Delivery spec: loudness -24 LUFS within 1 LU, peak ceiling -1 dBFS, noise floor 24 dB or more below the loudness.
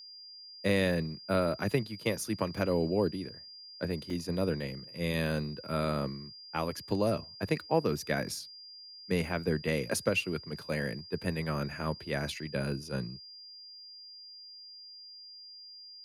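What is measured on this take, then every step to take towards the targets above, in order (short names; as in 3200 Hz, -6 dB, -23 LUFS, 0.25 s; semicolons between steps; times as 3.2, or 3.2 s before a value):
dropouts 1; longest dropout 2.5 ms; steady tone 4800 Hz; tone level -47 dBFS; loudness -33.0 LUFS; peak -13.5 dBFS; loudness target -24.0 LUFS
-> interpolate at 4.1, 2.5 ms; notch 4800 Hz, Q 30; gain +9 dB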